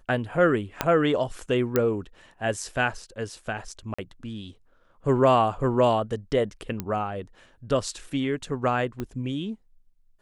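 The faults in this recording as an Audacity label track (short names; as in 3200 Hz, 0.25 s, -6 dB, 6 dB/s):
0.810000	0.810000	pop -7 dBFS
1.760000	1.760000	pop -8 dBFS
3.940000	3.980000	gap 45 ms
6.800000	6.800000	pop -15 dBFS
9.000000	9.000000	pop -18 dBFS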